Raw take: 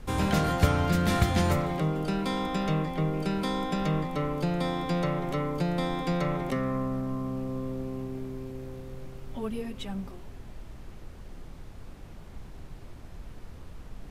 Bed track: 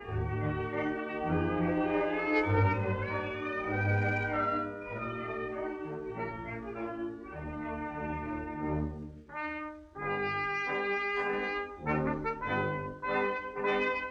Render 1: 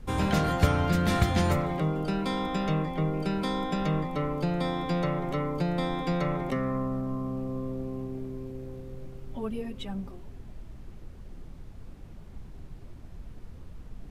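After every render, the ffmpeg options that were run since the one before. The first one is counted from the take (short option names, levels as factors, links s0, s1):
-af "afftdn=nr=6:nf=-46"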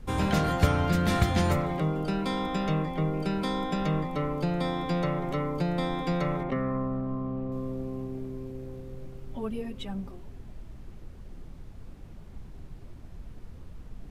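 -filter_complex "[0:a]asettb=1/sr,asplit=3[s0][s1][s2];[s0]atrim=end=6.434[s3];[s1]atrim=start=6.43:end=7.52,asetpts=PTS-STARTPTS,afade=t=in:d=0.004:c=qsin,afade=t=out:st=1.086:d=0.004:c=qsin,lowpass=2600[s4];[s2]atrim=start=7.516[s5];[s3][s4]acrossfade=d=0.004:c1=hsin:c2=qsin[s6];[s6][s5]acrossfade=d=0.004:c1=qsin:c2=hsin"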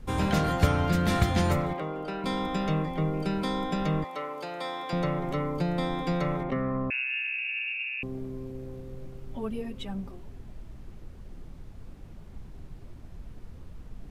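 -filter_complex "[0:a]asettb=1/sr,asplit=3[s0][s1][s2];[s0]atrim=end=1.734[s3];[s1]atrim=start=1.73:end=2.24,asetpts=PTS-STARTPTS,afade=t=in:d=0.004:c=qsin,afade=t=out:st=0.506:d=0.004:c=qsin,bass=f=250:g=-14,treble=f=4000:g=-10[s4];[s2]atrim=start=2.236[s5];[s3][s4]acrossfade=d=0.004:c1=hsin:c2=qsin[s6];[s6][s5]acrossfade=d=0.004:c1=qsin:c2=hsin,asettb=1/sr,asplit=3[s7][s8][s9];[s7]atrim=end=4.044[s10];[s8]atrim=start=4.04:end=4.93,asetpts=PTS-STARTPTS,afade=t=in:d=0.004:c=qsin,afade=t=out:st=0.886:d=0.004:c=qsin,highpass=560[s11];[s9]atrim=start=4.926[s12];[s10][s11]acrossfade=d=0.004:c1=hsin:c2=qsin[s13];[s13][s12]acrossfade=d=0.004:c1=qsin:c2=hsin,asettb=1/sr,asplit=3[s14][s15][s16];[s14]atrim=end=6.904[s17];[s15]atrim=start=6.9:end=8.03,asetpts=PTS-STARTPTS,afade=t=in:d=0.004:c=qsin,afade=t=out:st=1.126:d=0.004:c=qsin,lowpass=f=2400:t=q:w=0.5098,lowpass=f=2400:t=q:w=0.6013,lowpass=f=2400:t=q:w=0.9,lowpass=f=2400:t=q:w=2.563,afreqshift=-2800[s18];[s16]atrim=start=8.026[s19];[s17][s18]acrossfade=d=0.004:c1=hsin:c2=qsin[s20];[s20][s19]acrossfade=d=0.004:c1=qsin:c2=hsin"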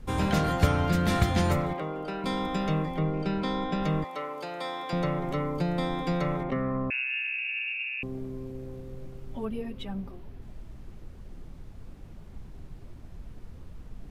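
-filter_complex "[0:a]asettb=1/sr,asplit=3[s0][s1][s2];[s0]atrim=end=2.994[s3];[s1]atrim=start=2.99:end=3.83,asetpts=PTS-STARTPTS,afade=t=in:d=0.004:c=qsin,afade=t=out:st=0.836:d=0.004:c=qsin,lowpass=5000[s4];[s2]atrim=start=3.826[s5];[s3][s4]acrossfade=d=0.004:c1=hsin:c2=qsin[s6];[s6][s5]acrossfade=d=0.004:c1=qsin:c2=hsin,asettb=1/sr,asplit=3[s7][s8][s9];[s7]atrim=end=9.454[s10];[s8]atrim=start=9.45:end=10.42,asetpts=PTS-STARTPTS,afade=t=in:d=0.004:c=qsin,afade=t=out:st=0.966:d=0.004:c=qsin,equalizer=f=7500:w=1.2:g=-7[s11];[s9]atrim=start=10.416[s12];[s10][s11]acrossfade=d=0.004:c1=hsin:c2=qsin[s13];[s13][s12]acrossfade=d=0.004:c1=qsin:c2=hsin"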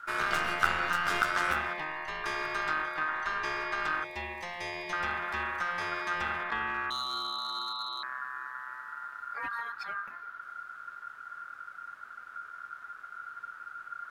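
-af "aeval=exprs='clip(val(0),-1,0.0376)':c=same,aeval=exprs='val(0)*sin(2*PI*1400*n/s)':c=same"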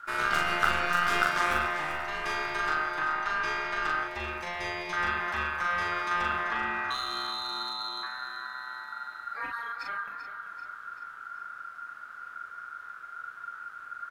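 -filter_complex "[0:a]asplit=2[s0][s1];[s1]adelay=40,volume=0.708[s2];[s0][s2]amix=inputs=2:normalize=0,aecho=1:1:387|774|1161|1548|1935|2322:0.299|0.152|0.0776|0.0396|0.0202|0.0103"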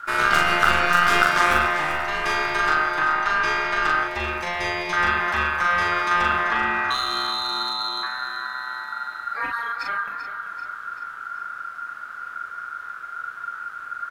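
-af "volume=2.66,alimiter=limit=0.708:level=0:latency=1"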